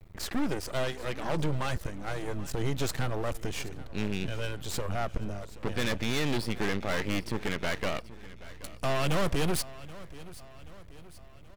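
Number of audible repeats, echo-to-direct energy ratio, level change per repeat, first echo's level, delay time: 3, -16.5 dB, -5.5 dB, -18.0 dB, 779 ms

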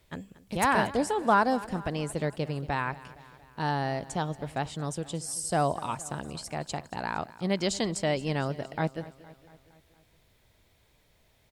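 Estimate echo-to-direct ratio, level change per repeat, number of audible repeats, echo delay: -16.5 dB, -4.5 dB, 4, 232 ms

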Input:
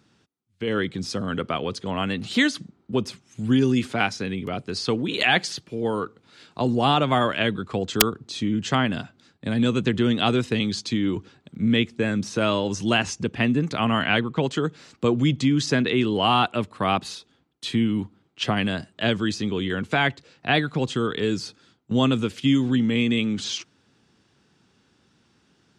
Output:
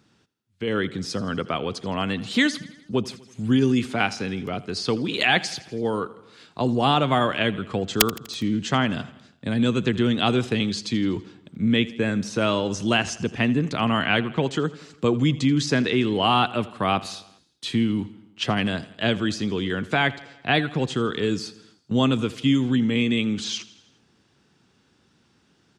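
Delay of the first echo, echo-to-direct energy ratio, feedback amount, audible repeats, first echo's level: 82 ms, -17.0 dB, 59%, 4, -19.0 dB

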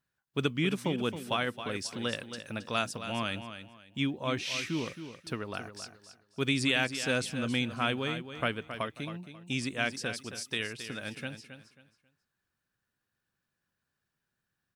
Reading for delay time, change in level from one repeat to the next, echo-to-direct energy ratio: 270 ms, -11.5 dB, -10.0 dB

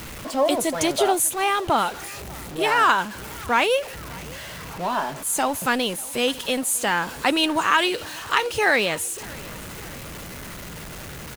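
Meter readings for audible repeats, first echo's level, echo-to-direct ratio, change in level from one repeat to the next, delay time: 3, -23.0 dB, -21.5 dB, -4.5 dB, 593 ms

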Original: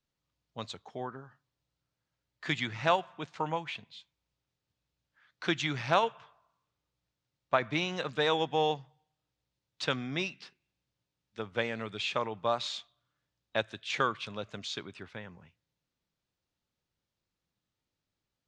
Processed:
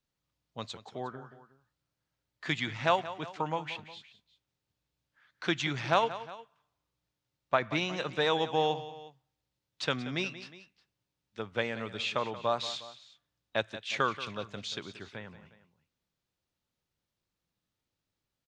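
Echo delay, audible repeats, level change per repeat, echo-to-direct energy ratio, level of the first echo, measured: 180 ms, 2, -5.0 dB, -13.5 dB, -14.5 dB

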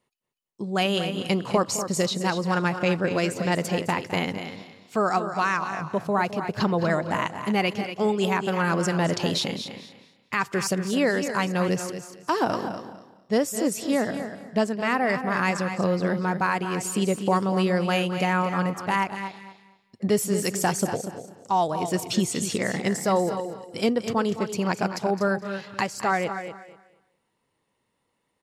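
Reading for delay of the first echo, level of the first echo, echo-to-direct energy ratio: 211 ms, -14.0 dB, -8.0 dB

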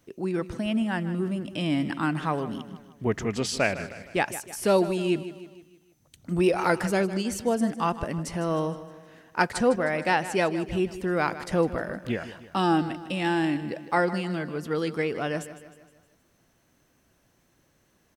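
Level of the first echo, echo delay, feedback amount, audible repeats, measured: -14.0 dB, 155 ms, 50%, 4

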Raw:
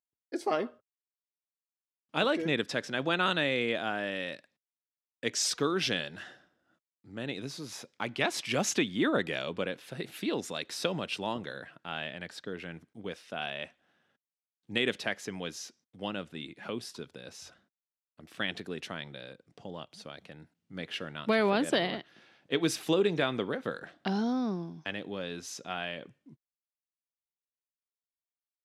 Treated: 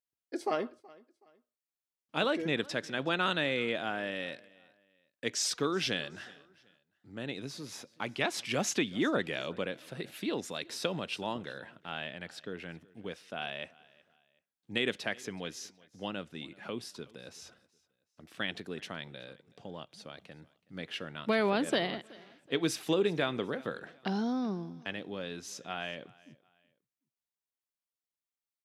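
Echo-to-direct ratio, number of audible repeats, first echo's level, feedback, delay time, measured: -23.0 dB, 2, -23.5 dB, 33%, 374 ms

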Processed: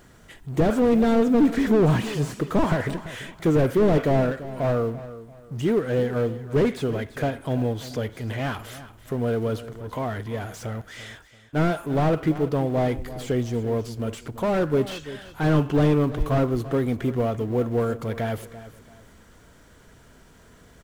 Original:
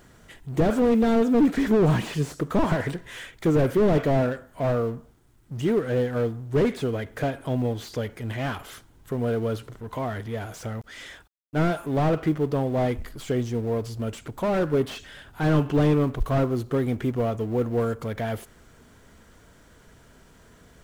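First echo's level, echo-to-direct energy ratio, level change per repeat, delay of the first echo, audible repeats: -15.0 dB, -14.5 dB, -10.0 dB, 339 ms, 2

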